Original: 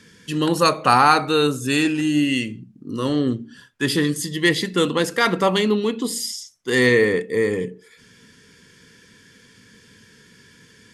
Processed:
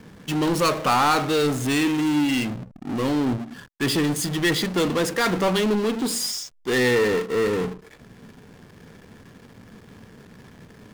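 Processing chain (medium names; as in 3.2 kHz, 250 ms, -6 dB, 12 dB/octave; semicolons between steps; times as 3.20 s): power-law waveshaper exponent 0.5; hysteresis with a dead band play -19 dBFS; trim -9 dB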